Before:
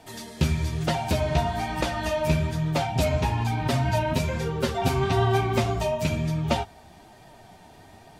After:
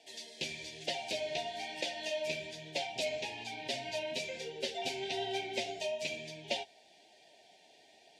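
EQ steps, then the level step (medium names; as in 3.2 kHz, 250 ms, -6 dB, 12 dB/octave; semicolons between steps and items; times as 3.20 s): high-pass 790 Hz 12 dB/octave; Butterworth band-stop 1.2 kHz, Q 0.65; distance through air 86 m; 0.0 dB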